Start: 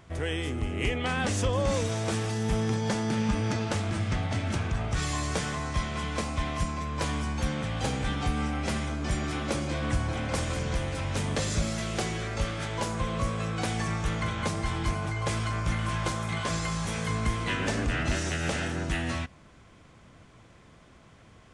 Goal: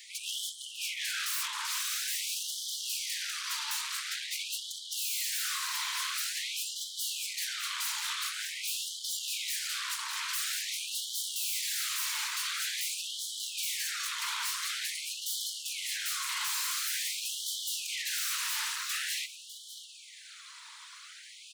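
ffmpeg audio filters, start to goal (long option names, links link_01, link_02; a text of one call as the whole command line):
ffmpeg -i in.wav -filter_complex "[0:a]equalizer=frequency=4100:width=3.1:gain=8.5,acompressor=threshold=-32dB:ratio=2.5,afftfilt=real='hypot(re,im)*cos(2*PI*random(0))':imag='hypot(re,im)*sin(2*PI*random(1))':win_size=512:overlap=0.75,crystalizer=i=3:c=0,asplit=2[link_01][link_02];[link_02]asetrate=29433,aresample=44100,atempo=1.49831,volume=-9dB[link_03];[link_01][link_03]amix=inputs=2:normalize=0,aeval=exprs='0.0794*sin(PI/2*5.62*val(0)/0.0794)':channel_layout=same,asplit=2[link_04][link_05];[link_05]aecho=0:1:601:0.237[link_06];[link_04][link_06]amix=inputs=2:normalize=0,afftfilt=real='re*gte(b*sr/1024,850*pow(3000/850,0.5+0.5*sin(2*PI*0.47*pts/sr)))':imag='im*gte(b*sr/1024,850*pow(3000/850,0.5+0.5*sin(2*PI*0.47*pts/sr)))':win_size=1024:overlap=0.75,volume=-7.5dB" out.wav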